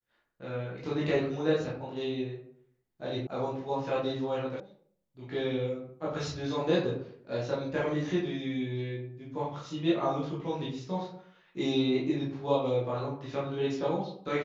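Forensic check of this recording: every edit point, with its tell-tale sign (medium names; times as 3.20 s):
3.27 s: sound stops dead
4.60 s: sound stops dead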